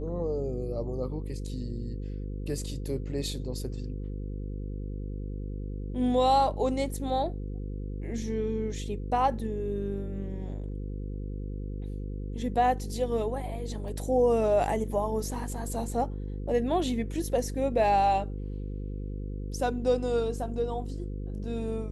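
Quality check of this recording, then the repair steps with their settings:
buzz 50 Hz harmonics 10 -35 dBFS
13.88 gap 2.2 ms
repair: de-hum 50 Hz, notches 10; interpolate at 13.88, 2.2 ms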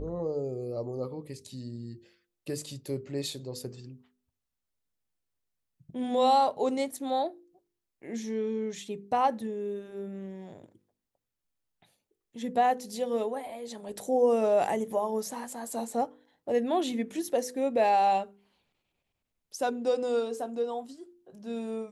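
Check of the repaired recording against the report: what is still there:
none

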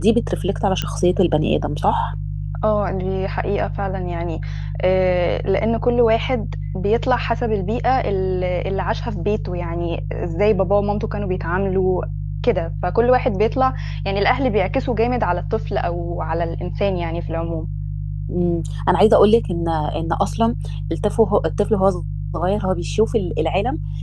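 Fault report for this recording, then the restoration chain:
hum 50 Hz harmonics 3 -25 dBFS
0.82 pop -8 dBFS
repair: de-click; de-hum 50 Hz, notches 3

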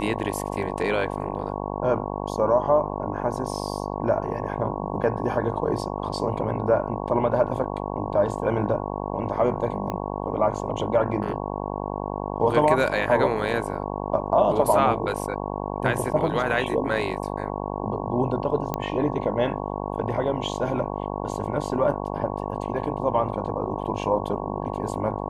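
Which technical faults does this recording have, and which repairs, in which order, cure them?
buzz 50 Hz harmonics 22 -30 dBFS
9.9 pop -16 dBFS
18.74 pop -12 dBFS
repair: de-click; de-hum 50 Hz, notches 22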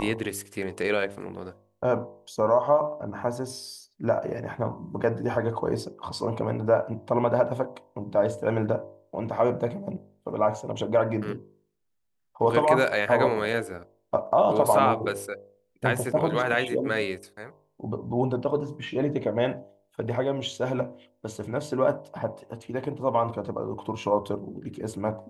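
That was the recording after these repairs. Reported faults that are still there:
9.9 pop

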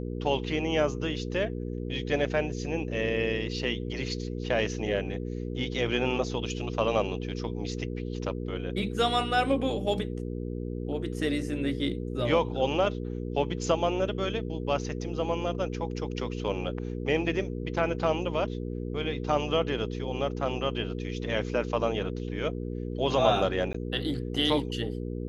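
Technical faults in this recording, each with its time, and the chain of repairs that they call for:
hum 60 Hz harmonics 8 -34 dBFS
23.73–23.74 gap 14 ms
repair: de-hum 60 Hz, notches 8; interpolate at 23.73, 14 ms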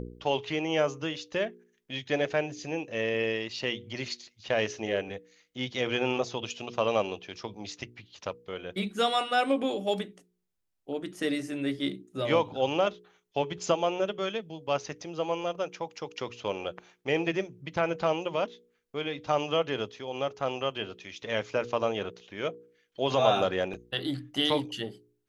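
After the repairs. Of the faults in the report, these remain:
none

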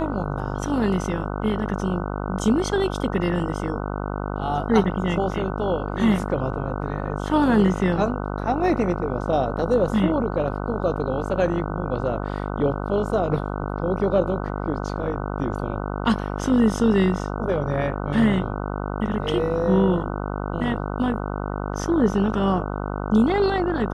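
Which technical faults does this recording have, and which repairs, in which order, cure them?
buzz 50 Hz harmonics 30 -28 dBFS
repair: de-hum 50 Hz, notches 30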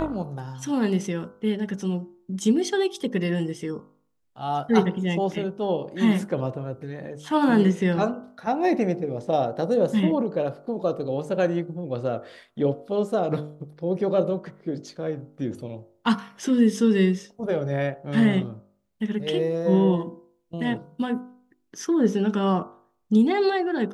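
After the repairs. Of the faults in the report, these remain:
none

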